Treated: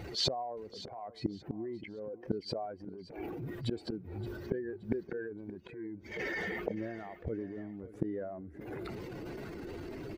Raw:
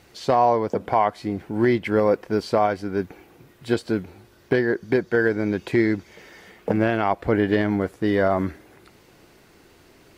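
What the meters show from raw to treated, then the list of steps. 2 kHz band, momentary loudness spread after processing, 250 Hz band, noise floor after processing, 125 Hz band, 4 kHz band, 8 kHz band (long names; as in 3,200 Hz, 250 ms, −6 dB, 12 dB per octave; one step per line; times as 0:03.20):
−15.0 dB, 9 LU, −15.5 dB, −54 dBFS, −13.0 dB, −1.0 dB, can't be measured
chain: expanding power law on the bin magnitudes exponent 1.8
dynamic equaliser 1,000 Hz, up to −6 dB, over −37 dBFS, Q 1.6
gate with flip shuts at −21 dBFS, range −32 dB
transient designer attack −9 dB, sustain +5 dB
repeating echo 573 ms, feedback 26%, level −16 dB
level +10.5 dB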